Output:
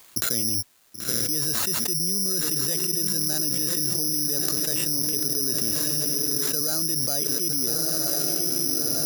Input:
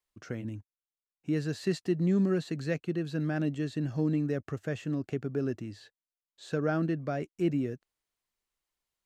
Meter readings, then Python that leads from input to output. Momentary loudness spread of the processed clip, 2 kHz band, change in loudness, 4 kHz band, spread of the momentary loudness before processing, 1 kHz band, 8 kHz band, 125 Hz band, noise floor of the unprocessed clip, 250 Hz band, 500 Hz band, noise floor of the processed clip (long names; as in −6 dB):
1 LU, +3.5 dB, +10.0 dB, +23.5 dB, 12 LU, +3.0 dB, can't be measured, −3.0 dB, below −85 dBFS, −2.0 dB, −1.0 dB, −46 dBFS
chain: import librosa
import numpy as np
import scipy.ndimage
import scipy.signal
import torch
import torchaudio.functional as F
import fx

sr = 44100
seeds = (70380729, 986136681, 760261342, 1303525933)

y = scipy.signal.sosfilt(scipy.signal.bessel(2, 170.0, 'highpass', norm='mag', fs=sr, output='sos'), x)
y = fx.high_shelf(y, sr, hz=5900.0, db=-6.5)
y = fx.echo_diffused(y, sr, ms=1058, feedback_pct=40, wet_db=-10.5)
y = (np.kron(y[::8], np.eye(8)[0]) * 8)[:len(y)]
y = fx.env_flatten(y, sr, amount_pct=100)
y = y * librosa.db_to_amplitude(-9.0)